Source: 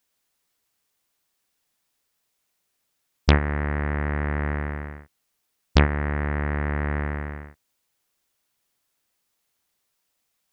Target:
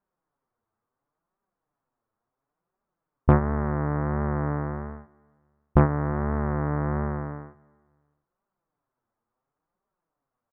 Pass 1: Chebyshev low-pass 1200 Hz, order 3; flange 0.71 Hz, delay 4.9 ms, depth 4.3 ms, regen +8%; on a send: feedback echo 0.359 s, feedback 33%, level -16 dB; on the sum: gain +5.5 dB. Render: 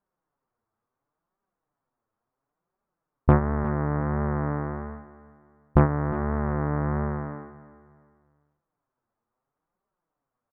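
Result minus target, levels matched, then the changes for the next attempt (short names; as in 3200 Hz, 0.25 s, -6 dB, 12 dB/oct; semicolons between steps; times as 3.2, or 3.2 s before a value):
echo-to-direct +11 dB
change: feedback echo 0.359 s, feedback 33%, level -27 dB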